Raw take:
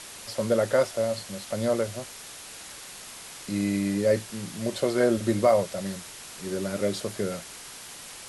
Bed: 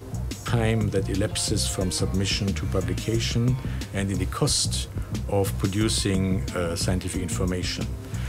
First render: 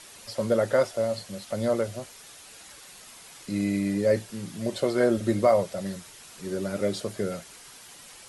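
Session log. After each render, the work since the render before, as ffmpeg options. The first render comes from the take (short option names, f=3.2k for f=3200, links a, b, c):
-af "afftdn=nr=7:nf=-43"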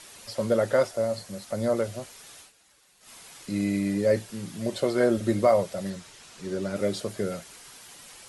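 -filter_complex "[0:a]asettb=1/sr,asplit=3[a][b][c];[a]atrim=end=0.884[d];[b]atrim=start=0.88:end=1.77,asetpts=PTS-STARTPTS,afade=t=in:d=0.004:c=qsin,afade=t=out:st=0.886:d=0.004:c=qsin,equalizer=f=3.1k:t=o:w=0.77:g=-5[e];[c]atrim=start=1.766[f];[d][e]acrossfade=d=0.004:c1=hsin:c2=qsin[g];[g][f]acrossfade=d=0.004:c1=qsin:c2=hsin,asettb=1/sr,asplit=3[h][i][j];[h]atrim=end=5.904[k];[i]atrim=start=5.9:end=6.76,asetpts=PTS-STARTPTS,afade=t=in:d=0.004:c=qsin,afade=t=out:st=0.856:d=0.004:c=qsin,lowpass=8k[l];[j]atrim=start=6.756[m];[k][l]acrossfade=d=0.004:c1=hsin:c2=qsin[n];[n][m]acrossfade=d=0.004:c1=qsin:c2=hsin,asplit=3[o][p][q];[o]atrim=end=2.52,asetpts=PTS-STARTPTS,afade=t=out:st=2.4:d=0.12:silence=0.199526[r];[p]atrim=start=2.52:end=3,asetpts=PTS-STARTPTS,volume=-14dB[s];[q]atrim=start=3,asetpts=PTS-STARTPTS,afade=t=in:d=0.12:silence=0.199526[t];[r][s][t]concat=n=3:v=0:a=1"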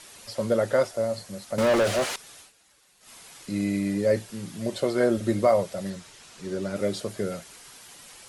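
-filter_complex "[0:a]asettb=1/sr,asplit=3[a][b][c];[a]atrim=end=1.584[d];[b]atrim=start=1.58:end=2.16,asetpts=PTS-STARTPTS,afade=t=in:d=0.004:c=qsin,afade=t=out:st=0.576:d=0.004:c=qsin,asplit=2[e][f];[f]highpass=f=720:p=1,volume=32dB,asoftclip=type=tanh:threshold=-14.5dB[g];[e][g]amix=inputs=2:normalize=0,lowpass=f=2.6k:p=1,volume=-6dB[h];[c]atrim=start=2.156[i];[d][h]acrossfade=d=0.004:c1=hsin:c2=qsin[j];[j][i]acrossfade=d=0.004:c1=qsin:c2=hsin"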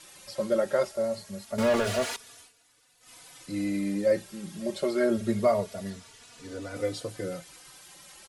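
-filter_complex "[0:a]asplit=2[a][b];[b]adelay=3.4,afreqshift=0.26[c];[a][c]amix=inputs=2:normalize=1"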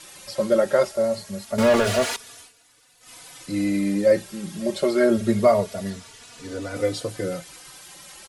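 -af "volume=6.5dB"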